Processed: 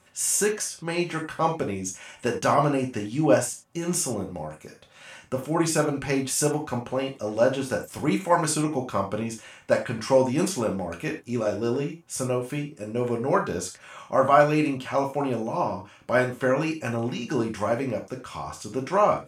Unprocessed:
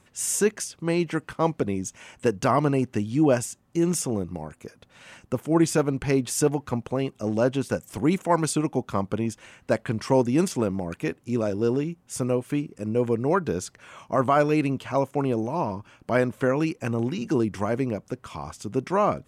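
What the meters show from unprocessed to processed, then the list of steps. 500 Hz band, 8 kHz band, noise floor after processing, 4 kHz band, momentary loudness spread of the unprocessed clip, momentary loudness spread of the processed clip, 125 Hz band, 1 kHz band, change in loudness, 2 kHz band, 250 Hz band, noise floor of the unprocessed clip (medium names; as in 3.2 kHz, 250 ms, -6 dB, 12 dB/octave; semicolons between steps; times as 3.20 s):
+0.5 dB, +3.0 dB, -53 dBFS, +3.0 dB, 10 LU, 11 LU, -2.5 dB, +2.0 dB, 0.0 dB, +3.0 dB, -2.5 dB, -61 dBFS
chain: bass shelf 310 Hz -8 dB; gated-style reverb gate 120 ms falling, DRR 0.5 dB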